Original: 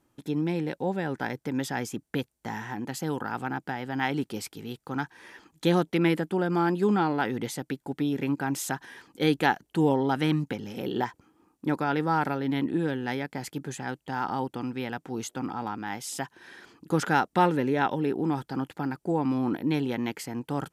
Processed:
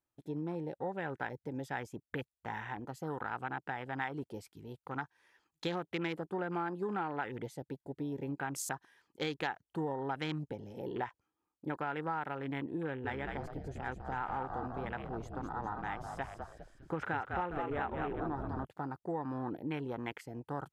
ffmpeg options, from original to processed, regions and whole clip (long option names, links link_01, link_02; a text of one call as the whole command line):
ffmpeg -i in.wav -filter_complex "[0:a]asettb=1/sr,asplit=3[link_01][link_02][link_03];[link_01]atrim=end=12.844[link_04];[link_02]atrim=start=12.84:end=18.65,asetpts=PTS-STARTPTS,afade=type=in:duration=0.004:curve=qsin,afade=type=out:start_time=5.806:duration=0.004:curve=qsin,aemphasis=mode=reproduction:type=cd,asplit=9[link_05][link_06][link_07][link_08][link_09][link_10][link_11][link_12][link_13];[link_06]adelay=202,afreqshift=-51,volume=-5.5dB[link_14];[link_07]adelay=404,afreqshift=-102,volume=-10.4dB[link_15];[link_08]adelay=606,afreqshift=-153,volume=-15.3dB[link_16];[link_09]adelay=808,afreqshift=-204,volume=-20.1dB[link_17];[link_10]adelay=1010,afreqshift=-255,volume=-25dB[link_18];[link_11]adelay=1212,afreqshift=-306,volume=-29.9dB[link_19];[link_12]adelay=1414,afreqshift=-357,volume=-34.8dB[link_20];[link_13]adelay=1616,afreqshift=-408,volume=-39.7dB[link_21];[link_05][link_14][link_15][link_16][link_17][link_18][link_19][link_20][link_21]amix=inputs=9:normalize=0,atrim=end_sample=256221[link_22];[link_03]atrim=start=18.646[link_23];[link_04][link_22]acrossfade=duration=0.004:curve1=hsin:curve2=qsin[link_24];[link_24][link_23]acrossfade=duration=0.004:curve1=qsin:curve2=hsin,afwtdn=0.0141,equalizer=frequency=230:width=0.93:gain=-10,acompressor=threshold=-30dB:ratio=6,volume=-2.5dB" out.wav